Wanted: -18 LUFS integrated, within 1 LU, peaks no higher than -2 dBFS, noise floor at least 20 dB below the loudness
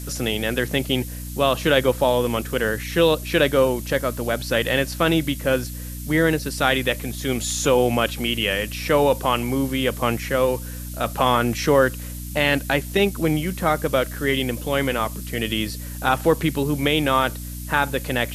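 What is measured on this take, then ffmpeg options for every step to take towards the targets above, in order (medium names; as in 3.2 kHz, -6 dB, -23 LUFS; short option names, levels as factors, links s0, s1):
hum 60 Hz; highest harmonic 300 Hz; hum level -30 dBFS; noise floor -32 dBFS; noise floor target -42 dBFS; loudness -21.5 LUFS; peak level -3.0 dBFS; loudness target -18.0 LUFS
-> -af "bandreject=f=60:t=h:w=4,bandreject=f=120:t=h:w=4,bandreject=f=180:t=h:w=4,bandreject=f=240:t=h:w=4,bandreject=f=300:t=h:w=4"
-af "afftdn=nr=10:nf=-32"
-af "volume=1.5,alimiter=limit=0.794:level=0:latency=1"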